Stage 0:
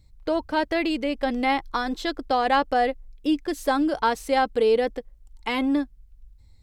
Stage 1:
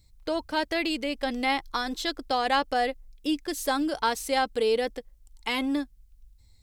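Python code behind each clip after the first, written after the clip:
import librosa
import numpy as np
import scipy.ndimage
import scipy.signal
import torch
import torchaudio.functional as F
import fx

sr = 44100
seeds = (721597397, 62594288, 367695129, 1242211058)

y = fx.high_shelf(x, sr, hz=2900.0, db=11.5)
y = F.gain(torch.from_numpy(y), -5.0).numpy()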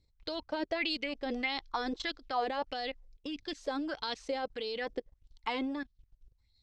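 y = scipy.signal.sosfilt(scipy.signal.butter(4, 6000.0, 'lowpass', fs=sr, output='sos'), x)
y = fx.level_steps(y, sr, step_db=17)
y = fx.bell_lfo(y, sr, hz=1.6, low_hz=360.0, high_hz=4300.0, db=13)
y = F.gain(torch.from_numpy(y), -3.5).numpy()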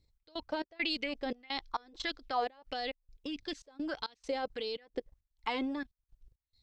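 y = fx.step_gate(x, sr, bpm=170, pattern='xx..xxx..xxxx', floor_db=-24.0, edge_ms=4.5)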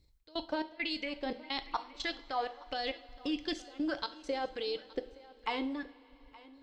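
y = fx.rider(x, sr, range_db=4, speed_s=0.5)
y = y + 10.0 ** (-21.0 / 20.0) * np.pad(y, (int(870 * sr / 1000.0), 0))[:len(y)]
y = fx.rev_double_slope(y, sr, seeds[0], early_s=0.43, late_s=4.4, knee_db=-19, drr_db=9.5)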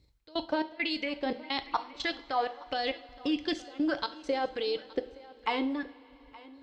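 y = scipy.signal.sosfilt(scipy.signal.butter(2, 51.0, 'highpass', fs=sr, output='sos'), x)
y = fx.high_shelf(y, sr, hz=6200.0, db=-8.0)
y = F.gain(torch.from_numpy(y), 5.0).numpy()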